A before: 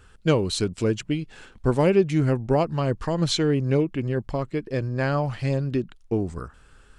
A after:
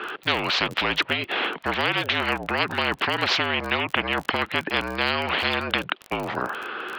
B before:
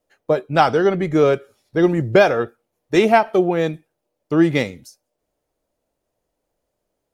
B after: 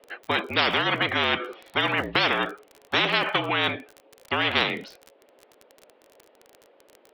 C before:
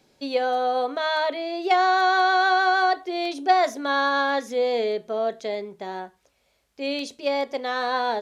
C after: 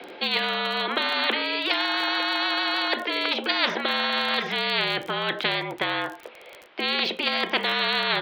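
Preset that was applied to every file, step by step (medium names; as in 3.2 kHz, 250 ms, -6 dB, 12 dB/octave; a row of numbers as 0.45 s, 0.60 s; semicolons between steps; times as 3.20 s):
mistuned SSB -51 Hz 370–3400 Hz; crackle 36 per s -52 dBFS; spectrum-flattening compressor 10:1; normalise loudness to -24 LUFS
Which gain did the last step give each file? +8.5 dB, -4.5 dB, +1.0 dB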